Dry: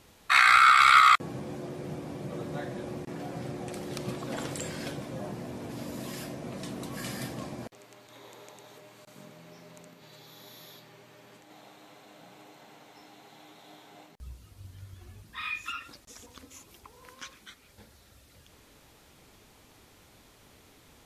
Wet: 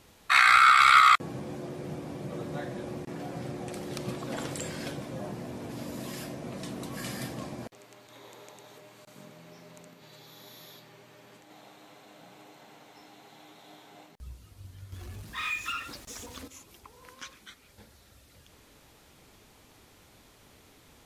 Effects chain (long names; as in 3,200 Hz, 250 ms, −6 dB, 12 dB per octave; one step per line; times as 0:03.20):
0:14.92–0:16.48: power curve on the samples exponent 0.7